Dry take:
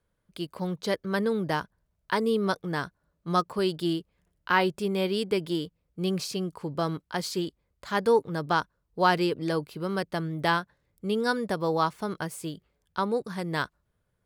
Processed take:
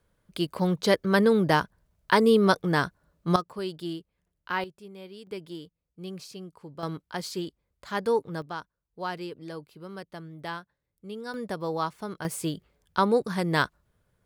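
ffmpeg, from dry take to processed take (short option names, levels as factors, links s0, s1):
-af "asetnsamples=n=441:p=0,asendcmd='3.36 volume volume -6.5dB;4.64 volume volume -17dB;5.27 volume volume -10.5dB;6.83 volume volume -3dB;8.42 volume volume -11dB;11.34 volume volume -4dB;12.25 volume volume 5dB',volume=2"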